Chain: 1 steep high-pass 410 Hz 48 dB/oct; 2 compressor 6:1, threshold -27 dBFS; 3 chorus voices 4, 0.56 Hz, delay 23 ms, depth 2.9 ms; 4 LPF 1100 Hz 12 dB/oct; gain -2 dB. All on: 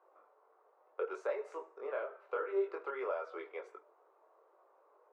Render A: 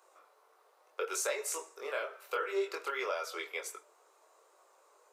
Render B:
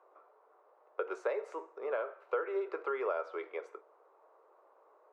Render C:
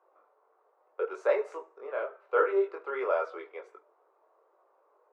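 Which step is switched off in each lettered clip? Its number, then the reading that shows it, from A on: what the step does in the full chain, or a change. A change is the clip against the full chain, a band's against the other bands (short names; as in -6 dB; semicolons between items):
4, 2 kHz band +8.5 dB; 3, momentary loudness spread change -2 LU; 2, mean gain reduction 4.5 dB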